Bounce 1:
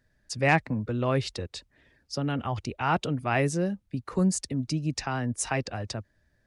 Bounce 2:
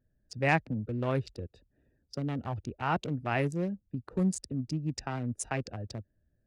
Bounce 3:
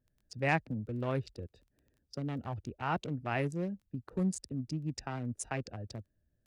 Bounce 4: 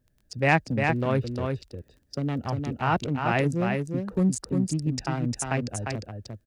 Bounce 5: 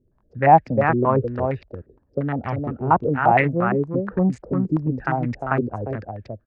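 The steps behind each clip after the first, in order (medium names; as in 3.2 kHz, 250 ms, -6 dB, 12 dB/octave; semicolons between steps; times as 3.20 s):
local Wiener filter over 41 samples; trim -3.5 dB
crackle 11 per s -51 dBFS; trim -3.5 dB
delay 352 ms -4.5 dB; trim +8.5 dB
step-sequenced low-pass 8.6 Hz 380–2100 Hz; trim +2.5 dB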